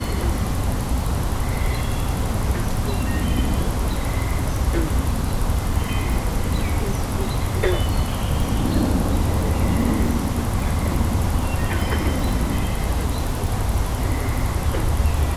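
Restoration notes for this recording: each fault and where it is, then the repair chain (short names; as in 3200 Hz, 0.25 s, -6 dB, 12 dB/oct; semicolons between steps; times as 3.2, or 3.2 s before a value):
crackle 28/s -27 dBFS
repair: de-click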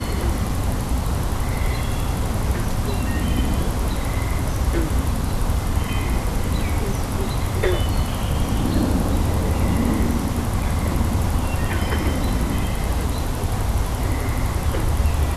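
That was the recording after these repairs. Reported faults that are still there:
none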